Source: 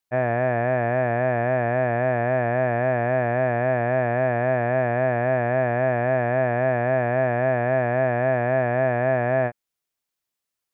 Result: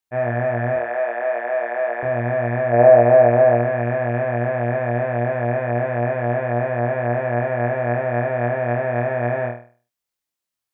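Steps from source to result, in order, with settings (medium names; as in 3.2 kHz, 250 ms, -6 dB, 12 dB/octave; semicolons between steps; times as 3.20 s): 0.76–2.03 s: high-pass 420 Hz 24 dB/octave; 2.72–3.60 s: peaking EQ 590 Hz +14.5 dB -> +8 dB 1.5 oct; on a send: flutter echo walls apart 4.3 m, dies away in 0.41 s; on the sum: trim -3 dB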